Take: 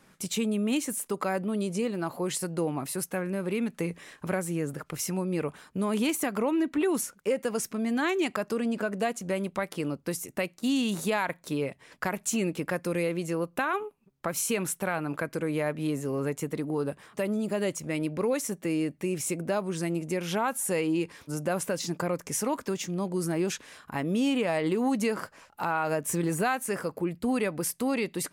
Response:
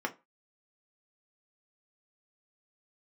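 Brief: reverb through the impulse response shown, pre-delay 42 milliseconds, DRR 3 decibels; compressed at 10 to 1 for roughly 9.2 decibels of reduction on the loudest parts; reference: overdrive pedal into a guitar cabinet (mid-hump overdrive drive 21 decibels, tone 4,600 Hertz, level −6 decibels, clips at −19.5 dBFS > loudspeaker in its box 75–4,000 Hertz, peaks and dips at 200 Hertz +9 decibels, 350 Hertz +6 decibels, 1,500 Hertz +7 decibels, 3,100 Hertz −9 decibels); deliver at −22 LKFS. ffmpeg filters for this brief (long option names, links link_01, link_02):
-filter_complex "[0:a]acompressor=threshold=-32dB:ratio=10,asplit=2[link_01][link_02];[1:a]atrim=start_sample=2205,adelay=42[link_03];[link_02][link_03]afir=irnorm=-1:irlink=0,volume=-8.5dB[link_04];[link_01][link_04]amix=inputs=2:normalize=0,asplit=2[link_05][link_06];[link_06]highpass=frequency=720:poles=1,volume=21dB,asoftclip=type=tanh:threshold=-19.5dB[link_07];[link_05][link_07]amix=inputs=2:normalize=0,lowpass=frequency=4600:poles=1,volume=-6dB,highpass=75,equalizer=frequency=200:width_type=q:width=4:gain=9,equalizer=frequency=350:width_type=q:width=4:gain=6,equalizer=frequency=1500:width_type=q:width=4:gain=7,equalizer=frequency=3100:width_type=q:width=4:gain=-9,lowpass=frequency=4000:width=0.5412,lowpass=frequency=4000:width=1.3066,volume=4.5dB"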